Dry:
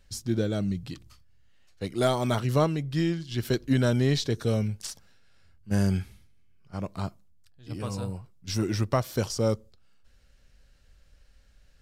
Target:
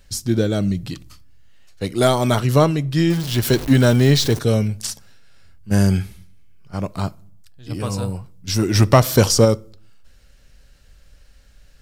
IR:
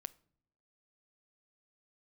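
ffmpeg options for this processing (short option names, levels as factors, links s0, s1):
-filter_complex "[0:a]asettb=1/sr,asplit=3[s0][s1][s2];[s0]atrim=end=3.104[s3];[s1]atrim=start=3.1:end=4.39,asetpts=PTS-STARTPTS,afade=t=in:d=0.004:c=qsin,afade=t=out:st=1.286:d=0.004:c=qsin,aeval=exprs='val(0)+0.5*0.02*sgn(val(0))':c=same[s4];[s2]atrim=start=4.386[s5];[s3][s4]acrossfade=d=0.004:c1=hsin:c2=qsin[s6];[s6][s5]acrossfade=d=0.004:c1=qsin:c2=hsin,asplit=2[s7][s8];[1:a]atrim=start_sample=2205,afade=t=out:st=0.43:d=0.01,atrim=end_sample=19404,highshelf=f=7600:g=7.5[s9];[s8][s9]afir=irnorm=-1:irlink=0,volume=2.66[s10];[s7][s10]amix=inputs=2:normalize=0,asplit=3[s11][s12][s13];[s11]afade=t=out:st=8.74:d=0.02[s14];[s12]acontrast=67,afade=t=in:st=8.74:d=0.02,afade=t=out:st=9.44:d=0.02[s15];[s13]afade=t=in:st=9.44:d=0.02[s16];[s14][s15][s16]amix=inputs=3:normalize=0"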